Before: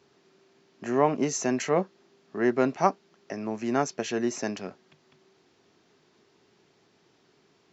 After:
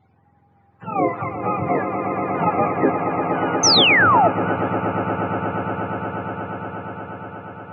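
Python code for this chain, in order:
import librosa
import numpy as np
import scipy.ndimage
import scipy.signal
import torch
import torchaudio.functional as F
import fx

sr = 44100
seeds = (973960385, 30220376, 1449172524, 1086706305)

y = fx.octave_mirror(x, sr, pivot_hz=560.0)
y = fx.echo_swell(y, sr, ms=119, loudest=8, wet_db=-8)
y = fx.spec_paint(y, sr, seeds[0], shape='fall', start_s=3.63, length_s=0.65, low_hz=630.0, high_hz=6400.0, level_db=-19.0)
y = F.gain(torch.from_numpy(y), 4.5).numpy()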